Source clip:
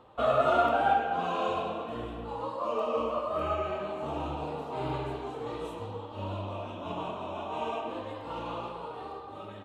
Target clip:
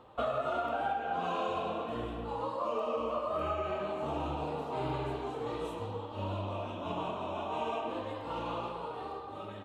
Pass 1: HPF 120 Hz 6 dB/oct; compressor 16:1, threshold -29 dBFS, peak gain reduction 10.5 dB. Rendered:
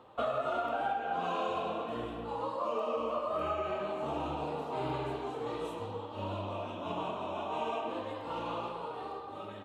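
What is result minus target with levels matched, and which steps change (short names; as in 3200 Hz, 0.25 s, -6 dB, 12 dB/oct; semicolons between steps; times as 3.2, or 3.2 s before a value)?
125 Hz band -3.0 dB
remove: HPF 120 Hz 6 dB/oct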